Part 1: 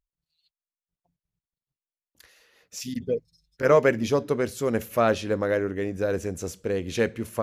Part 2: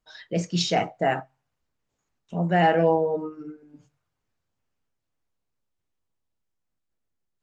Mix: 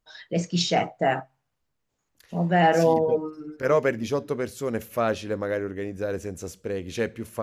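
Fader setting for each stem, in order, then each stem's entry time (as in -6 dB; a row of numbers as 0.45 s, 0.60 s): -3.0 dB, +0.5 dB; 0.00 s, 0.00 s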